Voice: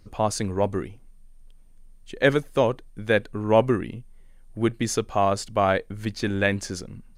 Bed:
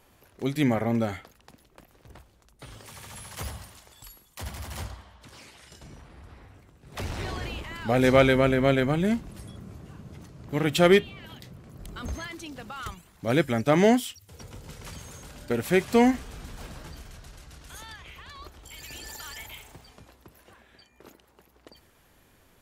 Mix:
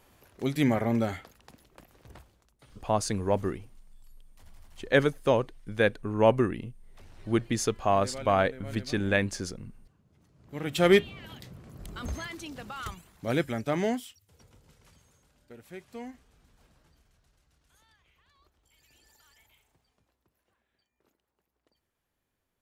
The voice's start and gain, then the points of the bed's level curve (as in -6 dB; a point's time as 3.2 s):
2.70 s, -3.0 dB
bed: 2.23 s -1 dB
2.97 s -22 dB
10.08 s -22 dB
10.95 s -1 dB
13 s -1 dB
15.27 s -22 dB